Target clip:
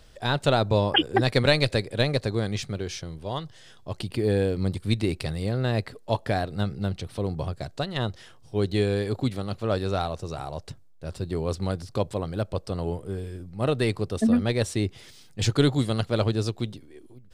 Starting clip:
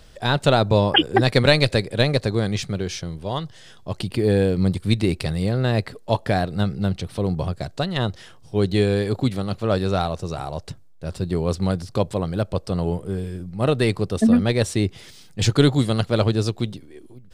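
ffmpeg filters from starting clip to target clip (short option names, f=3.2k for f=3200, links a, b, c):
-af "equalizer=f=180:w=7.4:g=-7,volume=-4.5dB"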